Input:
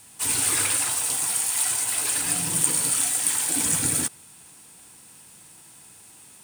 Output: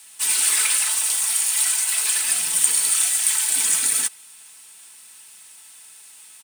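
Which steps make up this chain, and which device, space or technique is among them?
comb 4.6 ms, depth 44%; filter by subtraction (in parallel: LPF 2600 Hz 12 dB/oct + phase invert); on the sum: gain +2.5 dB

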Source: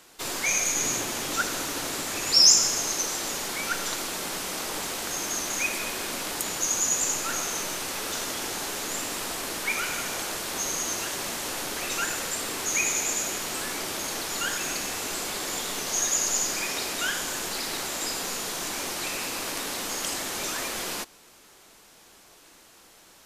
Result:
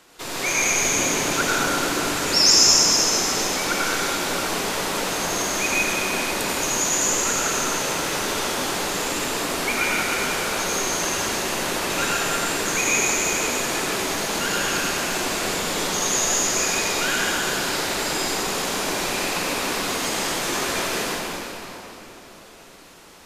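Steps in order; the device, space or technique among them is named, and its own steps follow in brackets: swimming-pool hall (reverb RT60 3.6 s, pre-delay 76 ms, DRR -6 dB; high shelf 5200 Hz -6.5 dB); gain +2 dB

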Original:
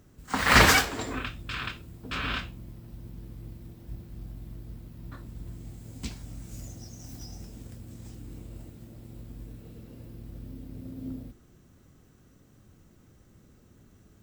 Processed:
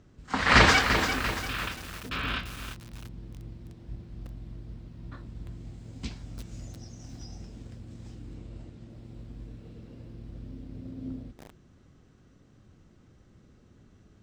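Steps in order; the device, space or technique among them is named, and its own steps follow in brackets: presence and air boost (bell 4600 Hz +2.5 dB 1.6 oct; high shelf 10000 Hz +3.5 dB); 8.35–8.9 LPF 9200 Hz; air absorption 110 m; lo-fi delay 0.343 s, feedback 55%, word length 6-bit, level -7 dB

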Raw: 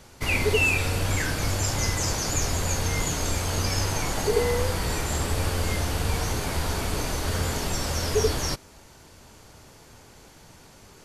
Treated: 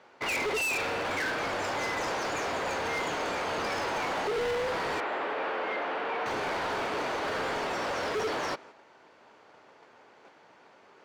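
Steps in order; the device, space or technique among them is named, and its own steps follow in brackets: walkie-talkie (BPF 430–2200 Hz; hard clip -33 dBFS, distortion -6 dB; gate -54 dBFS, range -6 dB); 5–6.26 three-band isolator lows -21 dB, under 240 Hz, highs -21 dB, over 3400 Hz; gain +5 dB

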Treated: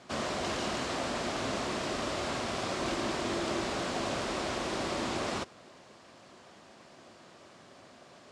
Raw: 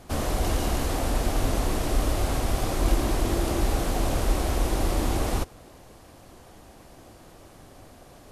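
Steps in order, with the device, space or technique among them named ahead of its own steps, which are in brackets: full-range speaker at full volume (Doppler distortion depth 0.27 ms; speaker cabinet 230–7200 Hz, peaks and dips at 300 Hz -7 dB, 470 Hz -6 dB, 790 Hz -6 dB, 6200 Hz -3 dB)

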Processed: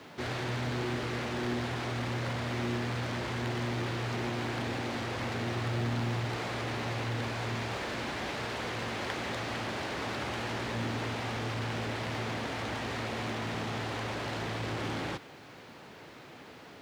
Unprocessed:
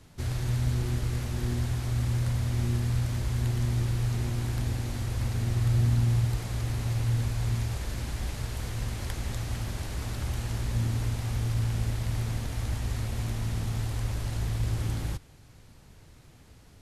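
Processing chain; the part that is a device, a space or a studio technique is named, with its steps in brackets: phone line with mismatched companding (BPF 310–3300 Hz; G.711 law mismatch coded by mu); gain +4.5 dB

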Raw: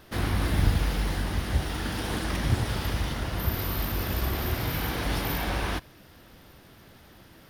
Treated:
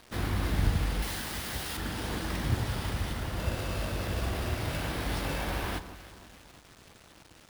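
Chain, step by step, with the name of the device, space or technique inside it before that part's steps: early 8-bit sampler (sample-rate reducer 14000 Hz, jitter 0%; bit-crush 8-bit); 1.02–1.77 tilt +2.5 dB/oct; echo with dull and thin repeats by turns 0.163 s, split 1400 Hz, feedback 65%, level -11.5 dB; gain -4 dB

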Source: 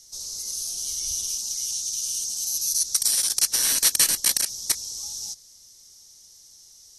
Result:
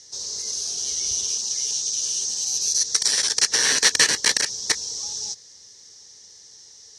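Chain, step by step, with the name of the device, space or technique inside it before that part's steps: car door speaker (speaker cabinet 84–6800 Hz, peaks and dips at 440 Hz +10 dB, 920 Hz +4 dB, 1800 Hz +10 dB); gain +5 dB

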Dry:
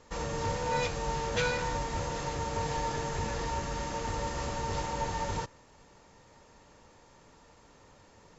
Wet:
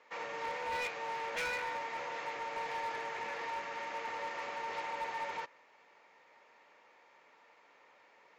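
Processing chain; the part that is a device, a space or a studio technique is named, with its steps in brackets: megaphone (BPF 560–3200 Hz; bell 2200 Hz +9 dB 0.48 oct; hard clip -30 dBFS, distortion -13 dB); gain -3 dB

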